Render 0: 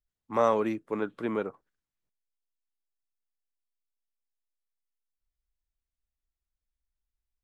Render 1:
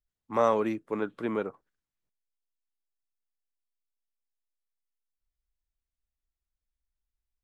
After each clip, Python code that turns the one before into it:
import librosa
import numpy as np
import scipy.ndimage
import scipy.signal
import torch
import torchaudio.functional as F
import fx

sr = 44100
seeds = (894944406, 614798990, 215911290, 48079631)

y = x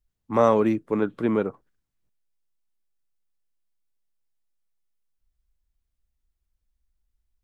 y = fx.low_shelf(x, sr, hz=330.0, db=9.5)
y = y * 10.0 ** (3.0 / 20.0)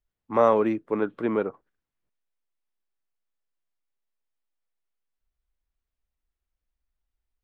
y = fx.bass_treble(x, sr, bass_db=-8, treble_db=-11)